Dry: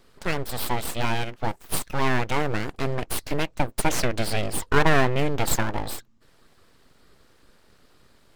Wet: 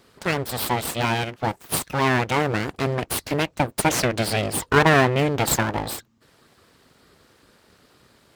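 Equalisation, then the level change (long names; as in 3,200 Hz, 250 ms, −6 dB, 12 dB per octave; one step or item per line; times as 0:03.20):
high-pass filter 73 Hz
+4.0 dB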